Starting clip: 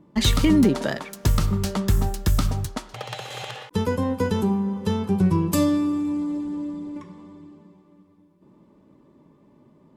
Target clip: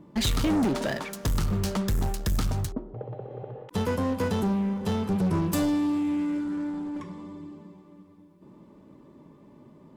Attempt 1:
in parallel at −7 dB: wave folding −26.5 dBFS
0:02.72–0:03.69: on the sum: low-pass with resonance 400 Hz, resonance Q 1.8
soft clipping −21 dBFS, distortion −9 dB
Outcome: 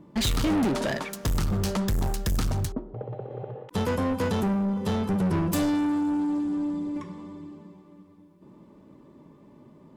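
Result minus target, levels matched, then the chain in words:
wave folding: distortion −15 dB
in parallel at −7 dB: wave folding −36.5 dBFS
0:02.72–0:03.69: on the sum: low-pass with resonance 400 Hz, resonance Q 1.8
soft clipping −21 dBFS, distortion −9 dB

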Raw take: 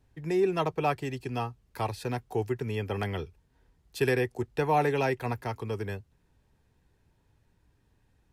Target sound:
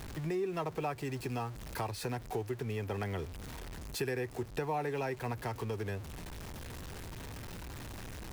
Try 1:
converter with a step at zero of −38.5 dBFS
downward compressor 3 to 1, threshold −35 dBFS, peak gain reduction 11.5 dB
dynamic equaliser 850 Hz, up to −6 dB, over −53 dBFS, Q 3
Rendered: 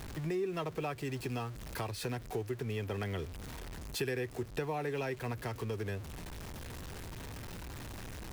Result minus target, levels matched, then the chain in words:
1,000 Hz band −3.0 dB
converter with a step at zero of −38.5 dBFS
downward compressor 3 to 1, threshold −35 dBFS, peak gain reduction 11.5 dB
dynamic equaliser 3,200 Hz, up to −6 dB, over −53 dBFS, Q 3

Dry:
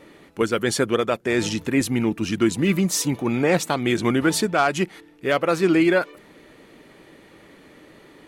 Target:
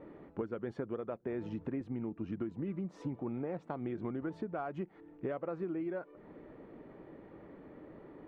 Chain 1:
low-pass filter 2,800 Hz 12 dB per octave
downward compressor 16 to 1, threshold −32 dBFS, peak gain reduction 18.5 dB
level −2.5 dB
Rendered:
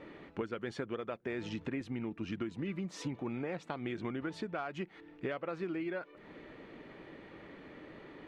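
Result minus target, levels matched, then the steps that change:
2,000 Hz band +8.5 dB
change: low-pass filter 990 Hz 12 dB per octave

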